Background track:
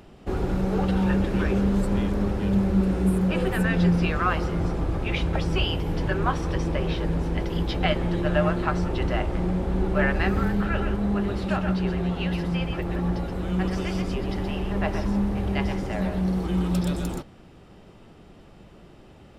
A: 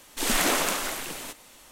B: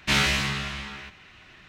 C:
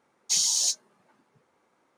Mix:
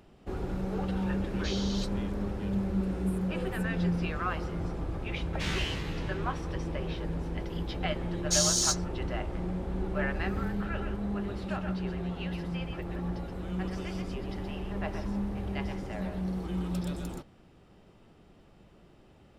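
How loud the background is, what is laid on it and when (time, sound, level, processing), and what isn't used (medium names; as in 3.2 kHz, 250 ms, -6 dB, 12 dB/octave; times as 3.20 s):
background track -8.5 dB
1.14 s: add C -3 dB + Chebyshev low-pass 3.4 kHz, order 3
5.32 s: add B -13.5 dB + loudspeaker Doppler distortion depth 0.14 ms
8.01 s: add C -2.5 dB
not used: A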